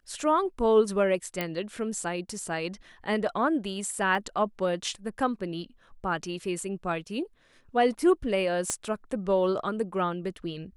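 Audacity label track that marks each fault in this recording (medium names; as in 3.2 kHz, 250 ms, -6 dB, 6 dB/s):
1.410000	1.410000	pop -14 dBFS
4.150000	4.150000	dropout 2.1 ms
8.700000	8.700000	pop -14 dBFS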